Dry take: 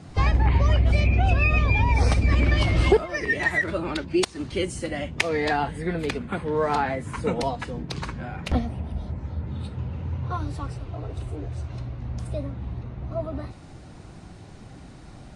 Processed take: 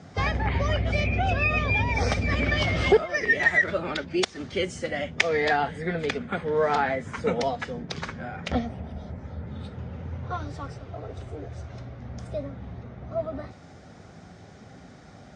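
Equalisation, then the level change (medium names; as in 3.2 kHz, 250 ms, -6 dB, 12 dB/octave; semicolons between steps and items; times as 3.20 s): dynamic bell 3 kHz, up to +4 dB, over -43 dBFS, Q 1.2; cabinet simulation 120–6500 Hz, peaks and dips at 130 Hz -8 dB, 200 Hz -3 dB, 320 Hz -10 dB, 990 Hz -8 dB, 2.7 kHz -8 dB, 4.2 kHz -7 dB; +2.5 dB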